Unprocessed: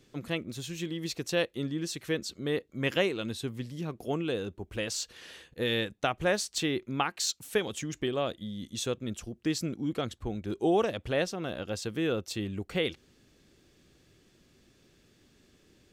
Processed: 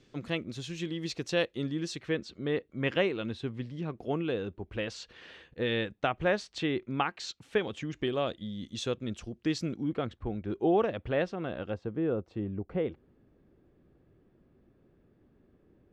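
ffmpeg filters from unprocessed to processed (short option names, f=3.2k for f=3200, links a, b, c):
-af "asetnsamples=n=441:p=0,asendcmd='1.99 lowpass f 3000;7.99 lowpass f 4900;9.83 lowpass f 2300;11.74 lowpass f 1000',lowpass=5.6k"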